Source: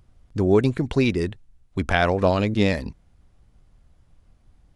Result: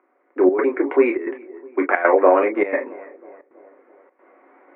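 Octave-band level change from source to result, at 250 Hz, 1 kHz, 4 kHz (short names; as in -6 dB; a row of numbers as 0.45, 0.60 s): +0.5 dB, +6.0 dB, under -20 dB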